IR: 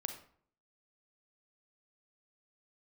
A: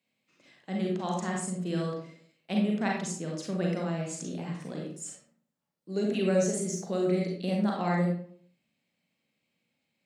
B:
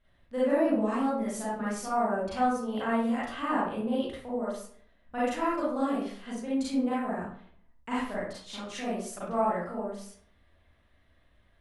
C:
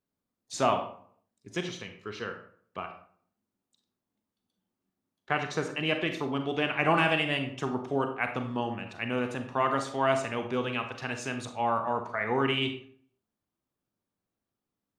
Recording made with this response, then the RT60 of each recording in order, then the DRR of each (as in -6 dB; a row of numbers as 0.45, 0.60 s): C; 0.55, 0.55, 0.55 s; -1.5, -9.5, 6.0 dB